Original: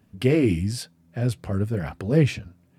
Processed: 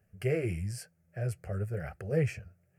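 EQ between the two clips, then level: static phaser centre 1 kHz, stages 6; -6.0 dB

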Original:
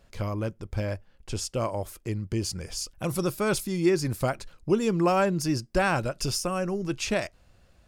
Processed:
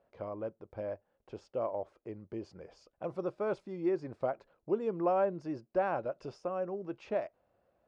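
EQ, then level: band-pass filter 600 Hz, Q 1.4; distance through air 100 m; -3.0 dB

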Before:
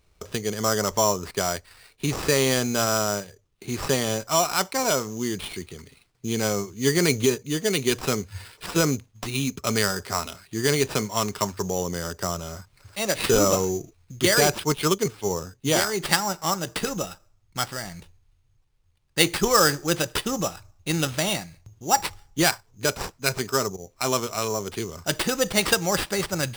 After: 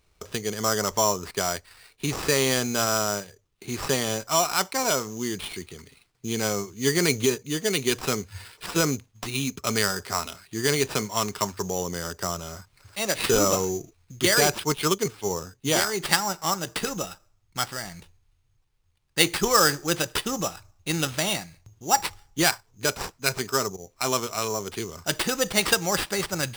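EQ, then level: bass shelf 350 Hz -3.5 dB; peaking EQ 570 Hz -2 dB 0.39 oct; 0.0 dB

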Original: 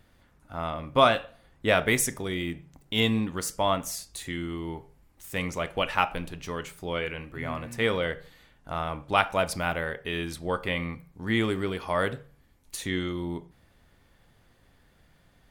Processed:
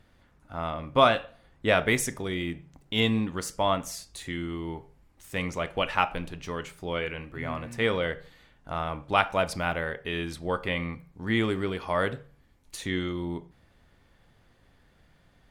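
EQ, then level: treble shelf 10 kHz -10.5 dB; 0.0 dB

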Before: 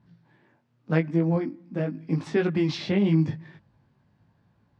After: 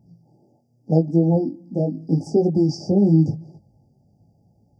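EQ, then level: brick-wall FIR band-stop 870–4600 Hz; +6.0 dB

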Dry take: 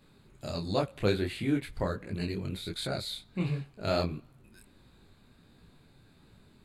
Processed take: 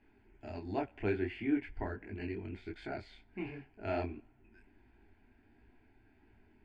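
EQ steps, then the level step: low-pass 4.1 kHz 24 dB/octave; static phaser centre 790 Hz, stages 8; -2.0 dB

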